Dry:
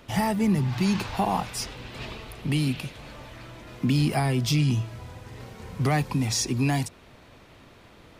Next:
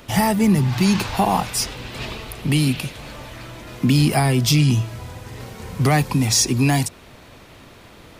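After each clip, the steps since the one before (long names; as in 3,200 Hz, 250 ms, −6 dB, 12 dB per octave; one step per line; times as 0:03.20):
high-shelf EQ 6,600 Hz +7 dB
level +6.5 dB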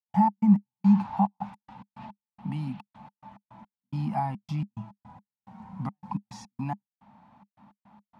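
gate pattern ".x.x..xxx.x" 107 BPM −60 dB
pair of resonant band-passes 420 Hz, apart 2.1 octaves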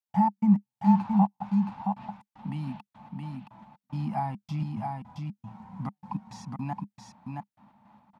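single-tap delay 671 ms −4 dB
level −1.5 dB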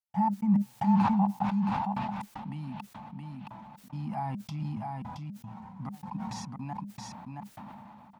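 level that may fall only so fast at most 21 dB per second
level −5 dB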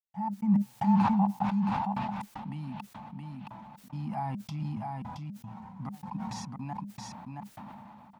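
fade in at the beginning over 0.52 s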